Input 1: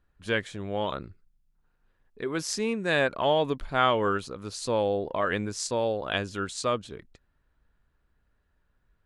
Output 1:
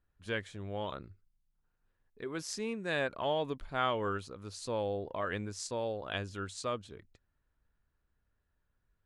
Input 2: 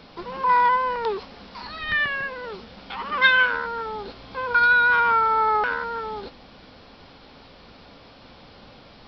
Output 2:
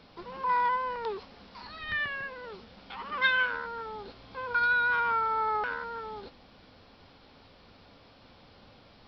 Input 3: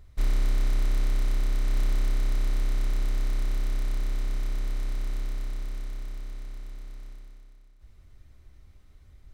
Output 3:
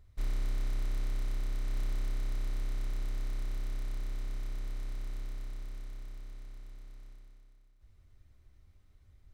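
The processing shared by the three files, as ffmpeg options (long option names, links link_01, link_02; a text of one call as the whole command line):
ffmpeg -i in.wav -af "equalizer=frequency=96:width=5.6:gain=6.5,volume=-8.5dB" out.wav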